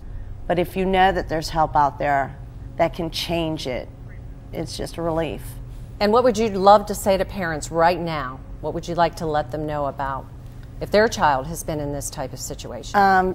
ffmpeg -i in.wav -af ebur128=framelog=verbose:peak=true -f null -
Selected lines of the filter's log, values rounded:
Integrated loudness:
  I:         -21.6 LUFS
  Threshold: -32.3 LUFS
Loudness range:
  LRA:         6.7 LU
  Threshold: -42.4 LUFS
  LRA low:   -26.5 LUFS
  LRA high:  -19.9 LUFS
True peak:
  Peak:       -1.1 dBFS